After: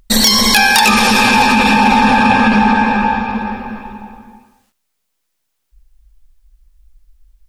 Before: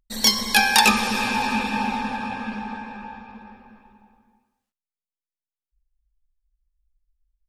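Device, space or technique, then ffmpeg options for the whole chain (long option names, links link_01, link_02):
loud club master: -af "acompressor=threshold=-24dB:ratio=2,asoftclip=type=hard:threshold=-13.5dB,alimiter=level_in=24dB:limit=-1dB:release=50:level=0:latency=1,volume=-1dB"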